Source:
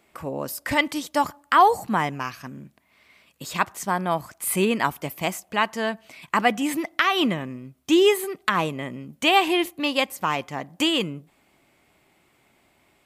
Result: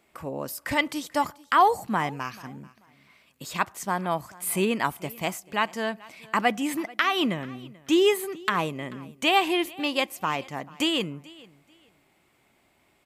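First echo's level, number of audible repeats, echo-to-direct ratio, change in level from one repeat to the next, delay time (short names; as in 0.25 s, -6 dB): -22.5 dB, 2, -22.5 dB, -12.5 dB, 0.437 s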